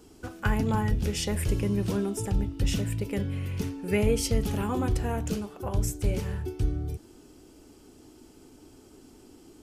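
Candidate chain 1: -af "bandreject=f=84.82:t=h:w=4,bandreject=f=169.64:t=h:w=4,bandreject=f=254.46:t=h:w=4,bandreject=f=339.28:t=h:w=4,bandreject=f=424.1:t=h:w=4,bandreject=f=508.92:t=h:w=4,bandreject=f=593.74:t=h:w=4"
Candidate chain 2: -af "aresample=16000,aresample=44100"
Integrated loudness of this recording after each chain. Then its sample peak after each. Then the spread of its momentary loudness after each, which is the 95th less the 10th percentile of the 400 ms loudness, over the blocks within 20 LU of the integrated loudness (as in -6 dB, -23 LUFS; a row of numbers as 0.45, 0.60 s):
-29.5, -29.5 LUFS; -12.5, -12.5 dBFS; 7, 7 LU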